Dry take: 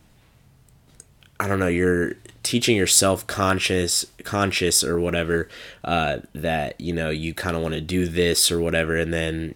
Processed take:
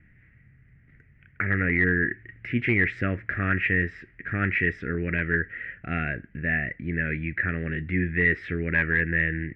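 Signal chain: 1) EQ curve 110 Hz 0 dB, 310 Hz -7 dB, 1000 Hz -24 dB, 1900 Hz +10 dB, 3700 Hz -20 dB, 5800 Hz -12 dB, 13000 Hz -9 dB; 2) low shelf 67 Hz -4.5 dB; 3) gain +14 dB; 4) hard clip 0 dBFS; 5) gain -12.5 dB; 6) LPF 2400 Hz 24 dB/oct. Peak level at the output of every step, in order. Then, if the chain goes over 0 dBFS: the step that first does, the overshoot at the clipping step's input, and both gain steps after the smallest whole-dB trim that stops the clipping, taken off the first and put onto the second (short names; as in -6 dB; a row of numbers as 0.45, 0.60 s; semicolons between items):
-8.0, -8.0, +6.0, 0.0, -12.5, -11.0 dBFS; step 3, 6.0 dB; step 3 +8 dB, step 5 -6.5 dB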